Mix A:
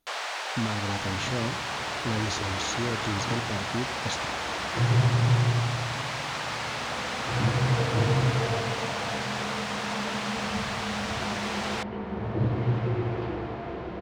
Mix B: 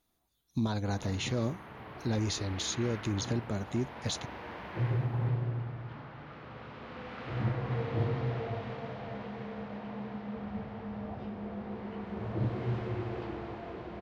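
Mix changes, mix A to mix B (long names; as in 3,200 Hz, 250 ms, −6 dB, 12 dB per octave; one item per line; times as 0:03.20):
first sound: muted
second sound −3.0 dB
reverb: off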